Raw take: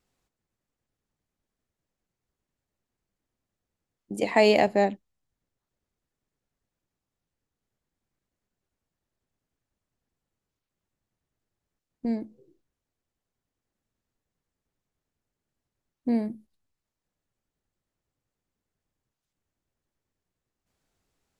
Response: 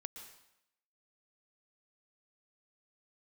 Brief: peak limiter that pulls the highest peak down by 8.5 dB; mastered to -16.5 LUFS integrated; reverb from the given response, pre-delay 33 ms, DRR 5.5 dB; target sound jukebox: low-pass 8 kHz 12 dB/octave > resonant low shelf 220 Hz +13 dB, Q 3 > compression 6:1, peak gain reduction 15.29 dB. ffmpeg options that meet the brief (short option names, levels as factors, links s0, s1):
-filter_complex "[0:a]alimiter=limit=0.178:level=0:latency=1,asplit=2[s0][s1];[1:a]atrim=start_sample=2205,adelay=33[s2];[s1][s2]afir=irnorm=-1:irlink=0,volume=0.794[s3];[s0][s3]amix=inputs=2:normalize=0,lowpass=8000,lowshelf=f=220:t=q:w=3:g=13,acompressor=threshold=0.0224:ratio=6,volume=12.6"